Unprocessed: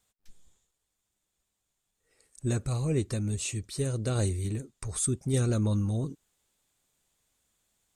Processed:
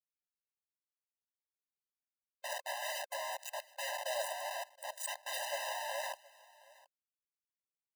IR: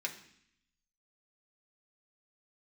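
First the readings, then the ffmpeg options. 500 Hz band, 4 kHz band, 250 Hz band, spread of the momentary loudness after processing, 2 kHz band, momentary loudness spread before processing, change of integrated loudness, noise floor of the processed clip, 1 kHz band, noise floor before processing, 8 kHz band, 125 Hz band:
-7.0 dB, +1.5 dB, under -40 dB, 6 LU, +5.5 dB, 8 LU, -9.5 dB, under -85 dBFS, +7.0 dB, -82 dBFS, -8.5 dB, under -40 dB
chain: -af "afftfilt=real='re*gte(hypot(re,im),0.0282)':imag='im*gte(hypot(re,im),0.0282)':win_size=1024:overlap=0.75,lowpass=5900,equalizer=f=140:w=5.9:g=14,bandreject=f=182.1:t=h:w=4,bandreject=f=364.2:t=h:w=4,bandreject=f=546.3:t=h:w=4,bandreject=f=728.4:t=h:w=4,bandreject=f=910.5:t=h:w=4,bandreject=f=1092.6:t=h:w=4,bandreject=f=1274.7:t=h:w=4,bandreject=f=1456.8:t=h:w=4,bandreject=f=1638.9:t=h:w=4,bandreject=f=1821:t=h:w=4,bandreject=f=2003.1:t=h:w=4,bandreject=f=2185.2:t=h:w=4,bandreject=f=2367.3:t=h:w=4,bandreject=f=2549.4:t=h:w=4,bandreject=f=2731.5:t=h:w=4,bandreject=f=2913.6:t=h:w=4,bandreject=f=3095.7:t=h:w=4,bandreject=f=3277.8:t=h:w=4,bandreject=f=3459.9:t=h:w=4,bandreject=f=3642:t=h:w=4,bandreject=f=3824.1:t=h:w=4,bandreject=f=4006.2:t=h:w=4,bandreject=f=4188.3:t=h:w=4,bandreject=f=4370.4:t=h:w=4,bandreject=f=4552.5:t=h:w=4,bandreject=f=4734.6:t=h:w=4,bandreject=f=4916.7:t=h:w=4,bandreject=f=5098.8:t=h:w=4,bandreject=f=5280.9:t=h:w=4,bandreject=f=5463:t=h:w=4,bandreject=f=5645.1:t=h:w=4,bandreject=f=5827.2:t=h:w=4,bandreject=f=6009.3:t=h:w=4,flanger=delay=1.2:depth=3.2:regen=72:speed=0.45:shape=sinusoidal,acrusher=bits=5:mix=0:aa=0.000001,aecho=1:1:721:0.075,afftfilt=real='re*eq(mod(floor(b*sr/1024/520),2),1)':imag='im*eq(mod(floor(b*sr/1024/520),2),1)':win_size=1024:overlap=0.75,volume=1.68"

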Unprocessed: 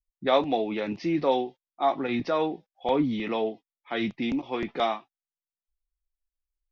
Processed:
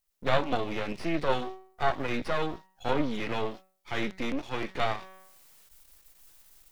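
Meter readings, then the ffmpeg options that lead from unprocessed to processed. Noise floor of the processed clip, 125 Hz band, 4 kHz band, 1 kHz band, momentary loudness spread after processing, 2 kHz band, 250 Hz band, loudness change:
-72 dBFS, +1.5 dB, -2.0 dB, -3.5 dB, 8 LU, +2.0 dB, -5.5 dB, -4.0 dB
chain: -filter_complex "[0:a]bandreject=f=188.5:t=h:w=4,bandreject=f=377:t=h:w=4,bandreject=f=565.5:t=h:w=4,bandreject=f=754:t=h:w=4,bandreject=f=942.5:t=h:w=4,bandreject=f=1131:t=h:w=4,bandreject=f=1319.5:t=h:w=4,bandreject=f=1508:t=h:w=4,bandreject=f=1696.5:t=h:w=4,bandreject=f=1885:t=h:w=4,bandreject=f=2073.5:t=h:w=4,crystalizer=i=6.5:c=0,areverse,acompressor=mode=upward:threshold=0.0178:ratio=2.5,areverse,aeval=exprs='max(val(0),0)':c=same,acrossover=split=2500[s0][s1];[s1]acompressor=threshold=0.00447:ratio=4:attack=1:release=60[s2];[s0][s2]amix=inputs=2:normalize=0"

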